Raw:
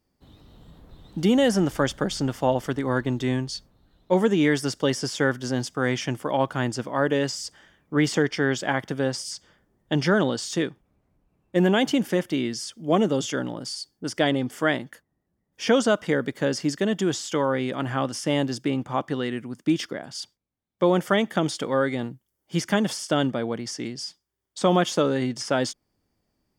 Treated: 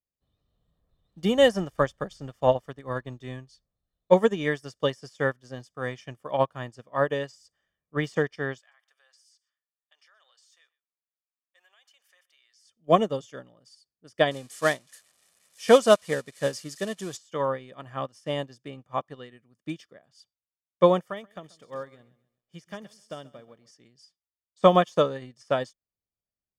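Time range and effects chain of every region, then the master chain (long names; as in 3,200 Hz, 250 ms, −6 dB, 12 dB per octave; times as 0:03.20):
0:08.59–0:12.65: Bessel high-pass filter 1,400 Hz, order 4 + downward compressor 3 to 1, threshold −34 dBFS + single-tap delay 124 ms −22.5 dB
0:14.31–0:17.17: spike at every zero crossing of −19.5 dBFS + low-pass filter 10,000 Hz 24 dB per octave
0:21.03–0:23.71: downward compressor 1.5 to 1, threshold −31 dBFS + feedback echo at a low word length 133 ms, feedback 35%, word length 9 bits, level −12 dB
whole clip: comb filter 1.7 ms, depth 46%; dynamic equaliser 940 Hz, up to +6 dB, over −43 dBFS, Q 4.9; expander for the loud parts 2.5 to 1, over −34 dBFS; level +4 dB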